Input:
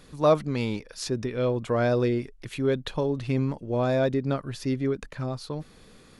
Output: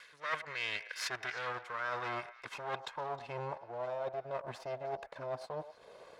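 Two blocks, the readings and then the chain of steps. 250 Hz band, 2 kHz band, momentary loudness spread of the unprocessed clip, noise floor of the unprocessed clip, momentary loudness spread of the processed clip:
-27.0 dB, -1.0 dB, 10 LU, -53 dBFS, 6 LU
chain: comb filter that takes the minimum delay 1.9 ms; treble shelf 2.3 kHz +11 dB; transient shaper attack -2 dB, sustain -6 dB; band-pass sweep 1.8 kHz -> 690 Hz, 0.90–3.92 s; reverse; compression 8:1, threshold -42 dBFS, peak gain reduction 17 dB; reverse; dynamic bell 430 Hz, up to -7 dB, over -59 dBFS, Q 1.5; on a send: repeats whose band climbs or falls 104 ms, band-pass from 690 Hz, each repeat 1.4 oct, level -10.5 dB; on the sum: trim +9 dB

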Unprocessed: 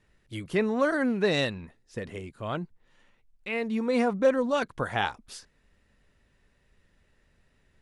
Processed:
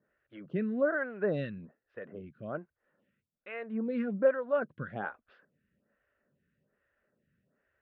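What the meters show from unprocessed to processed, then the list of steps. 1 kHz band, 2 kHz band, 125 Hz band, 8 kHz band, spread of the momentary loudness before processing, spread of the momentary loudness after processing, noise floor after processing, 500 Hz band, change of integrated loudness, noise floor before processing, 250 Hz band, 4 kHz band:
-10.0 dB, -6.5 dB, -5.5 dB, under -30 dB, 18 LU, 18 LU, under -85 dBFS, -4.5 dB, -5.0 dB, -68 dBFS, -6.5 dB, under -20 dB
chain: cabinet simulation 110–2500 Hz, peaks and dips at 150 Hz +5 dB, 210 Hz +4 dB, 580 Hz +6 dB, 910 Hz -8 dB, 1.5 kHz +7 dB, 2.2 kHz -5 dB; lamp-driven phase shifter 1.2 Hz; trim -5.5 dB

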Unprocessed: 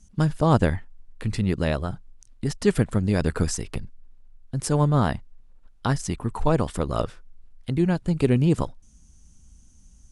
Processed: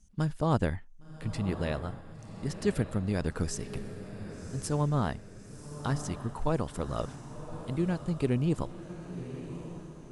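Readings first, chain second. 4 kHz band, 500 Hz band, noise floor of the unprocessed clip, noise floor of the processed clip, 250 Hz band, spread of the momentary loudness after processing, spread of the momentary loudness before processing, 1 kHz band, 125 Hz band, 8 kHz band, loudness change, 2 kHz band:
-7.5 dB, -7.5 dB, -53 dBFS, -49 dBFS, -7.5 dB, 15 LU, 14 LU, -7.5 dB, -7.5 dB, -7.5 dB, -8.5 dB, -7.5 dB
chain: echo that smears into a reverb 1098 ms, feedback 45%, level -11 dB; trim -8 dB

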